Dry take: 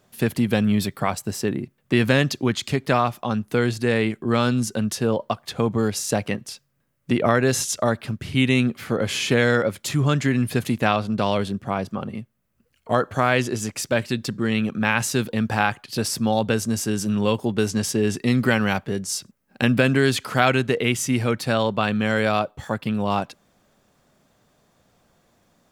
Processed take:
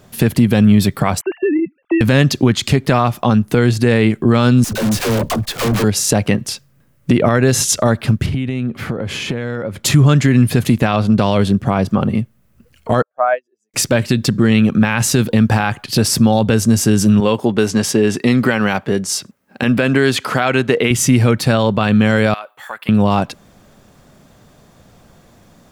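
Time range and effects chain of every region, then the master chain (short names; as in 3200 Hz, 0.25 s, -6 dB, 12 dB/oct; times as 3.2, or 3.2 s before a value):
1.21–2.01 sine-wave speech + compressor 4:1, threshold -26 dBFS
4.64–5.84 block floating point 3-bit + dispersion lows, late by 84 ms, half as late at 350 Hz + tube stage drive 28 dB, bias 0.3
8.26–9.85 high shelf 3000 Hz -11.5 dB + compressor 10:1, threshold -32 dBFS
13.02–13.74 spectral contrast raised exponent 1.9 + ladder high-pass 550 Hz, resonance 45% + upward expander 2.5:1, over -45 dBFS
17.2–20.91 HPF 380 Hz 6 dB/oct + high shelf 3800 Hz -6.5 dB
22.34–22.89 HPF 1400 Hz + bell 5800 Hz -14.5 dB 1.6 oct + compressor 3:1, threshold -34 dBFS
whole clip: low shelf 240 Hz +7 dB; compressor 2:1, threshold -23 dBFS; maximiser +13 dB; gain -1 dB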